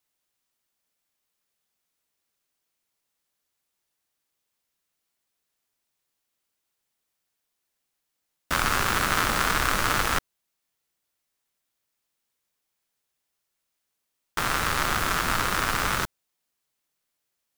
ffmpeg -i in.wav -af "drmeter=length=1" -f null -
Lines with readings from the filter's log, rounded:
Channel 1: DR: 15.7
Overall DR: 15.7